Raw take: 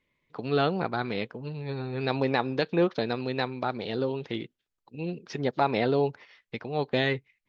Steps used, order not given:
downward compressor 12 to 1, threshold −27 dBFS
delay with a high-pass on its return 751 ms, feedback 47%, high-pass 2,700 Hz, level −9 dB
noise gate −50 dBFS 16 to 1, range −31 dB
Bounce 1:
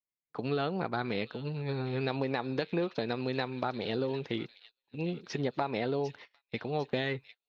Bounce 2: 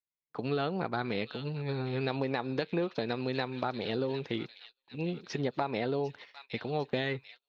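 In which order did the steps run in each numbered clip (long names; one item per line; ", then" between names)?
downward compressor, then delay with a high-pass on its return, then noise gate
delay with a high-pass on its return, then noise gate, then downward compressor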